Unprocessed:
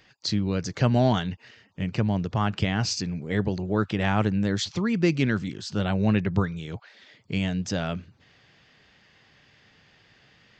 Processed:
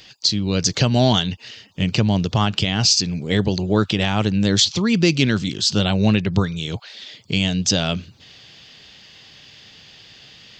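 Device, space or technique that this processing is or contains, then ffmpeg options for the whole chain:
over-bright horn tweeter: -af "highshelf=f=2.5k:t=q:w=1.5:g=8.5,alimiter=limit=-13dB:level=0:latency=1:release=387,volume=8dB"

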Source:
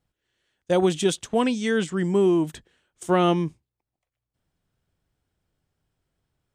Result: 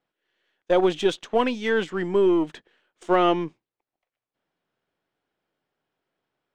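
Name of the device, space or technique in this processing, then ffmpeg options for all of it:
crystal radio: -af "highpass=320,lowpass=3.4k,aeval=exprs='if(lt(val(0),0),0.708*val(0),val(0))':c=same,volume=4dB"

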